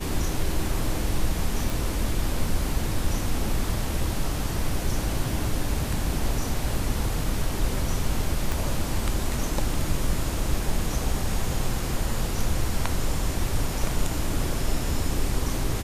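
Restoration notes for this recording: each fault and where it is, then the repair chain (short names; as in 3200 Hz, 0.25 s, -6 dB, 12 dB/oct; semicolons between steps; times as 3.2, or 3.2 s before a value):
1.7 pop
8.52 pop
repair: de-click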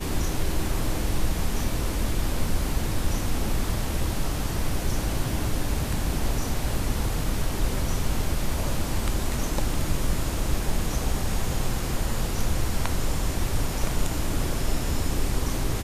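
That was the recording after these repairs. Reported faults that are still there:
8.52 pop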